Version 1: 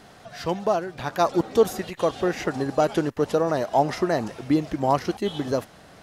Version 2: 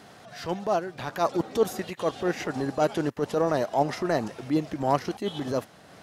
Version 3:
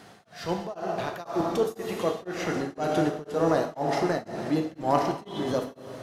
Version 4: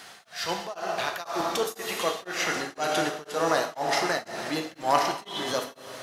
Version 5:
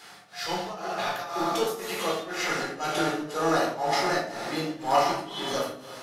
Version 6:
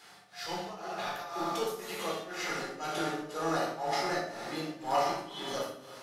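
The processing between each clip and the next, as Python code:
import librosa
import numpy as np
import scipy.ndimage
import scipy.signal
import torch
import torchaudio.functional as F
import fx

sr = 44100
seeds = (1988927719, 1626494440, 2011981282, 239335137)

y1 = scipy.signal.sosfilt(scipy.signal.butter(2, 90.0, 'highpass', fs=sr, output='sos'), x)
y1 = fx.transient(y1, sr, attack_db=-8, sustain_db=-3)
y2 = fx.rev_plate(y1, sr, seeds[0], rt60_s=2.0, hf_ratio=0.85, predelay_ms=0, drr_db=1.0)
y2 = y2 * np.abs(np.cos(np.pi * 2.0 * np.arange(len(y2)) / sr))
y3 = fx.tilt_shelf(y2, sr, db=-10.0, hz=680.0)
y4 = fx.room_shoebox(y3, sr, seeds[1], volume_m3=460.0, walls='furnished', distance_m=4.0)
y4 = F.gain(torch.from_numpy(y4), -6.5).numpy()
y5 = fx.room_flutter(y4, sr, wall_m=10.6, rt60_s=0.36)
y5 = F.gain(torch.from_numpy(y5), -7.0).numpy()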